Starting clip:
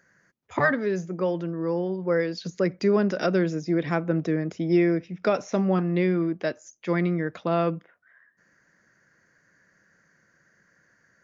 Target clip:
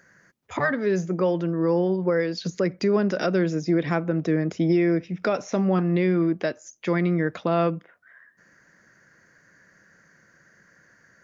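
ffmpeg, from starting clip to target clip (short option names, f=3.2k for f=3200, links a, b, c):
-af "alimiter=limit=-19dB:level=0:latency=1:release=400,volume=6dB"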